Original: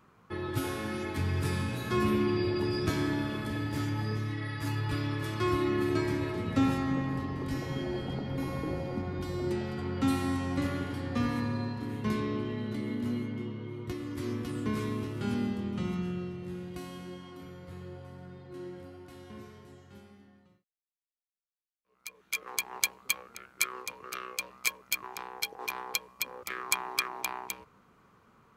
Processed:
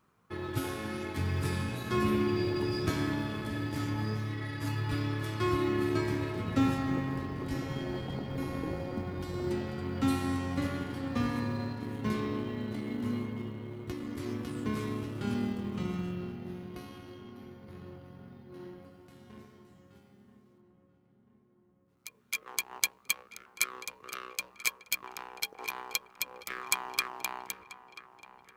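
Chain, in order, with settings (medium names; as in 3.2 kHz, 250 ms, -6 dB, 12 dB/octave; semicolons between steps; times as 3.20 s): companding laws mixed up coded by A; 16.12–18.85 s: peaking EQ 7.8 kHz -13.5 dB 0.28 oct; filtered feedback delay 986 ms, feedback 59%, low-pass 2.5 kHz, level -14.5 dB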